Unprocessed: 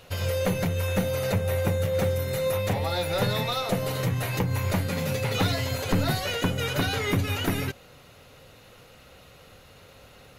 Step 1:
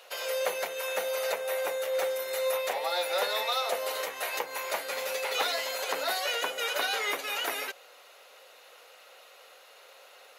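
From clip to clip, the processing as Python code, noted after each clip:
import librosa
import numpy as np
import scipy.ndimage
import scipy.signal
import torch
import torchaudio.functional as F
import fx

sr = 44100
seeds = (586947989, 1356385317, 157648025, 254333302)

y = scipy.signal.sosfilt(scipy.signal.butter(4, 510.0, 'highpass', fs=sr, output='sos'), x)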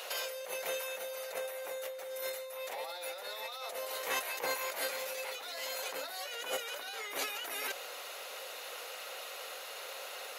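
y = fx.high_shelf(x, sr, hz=5500.0, db=5.0)
y = fx.over_compress(y, sr, threshold_db=-40.0, ratio=-1.0)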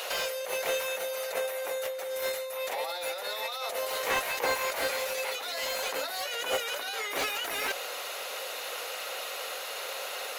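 y = fx.slew_limit(x, sr, full_power_hz=56.0)
y = y * 10.0 ** (7.5 / 20.0)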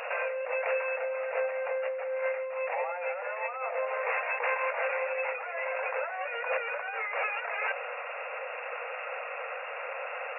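y = (np.mod(10.0 ** (21.0 / 20.0) * x + 1.0, 2.0) - 1.0) / 10.0 ** (21.0 / 20.0)
y = fx.brickwall_bandpass(y, sr, low_hz=440.0, high_hz=2800.0)
y = y * 10.0 ** (2.0 / 20.0)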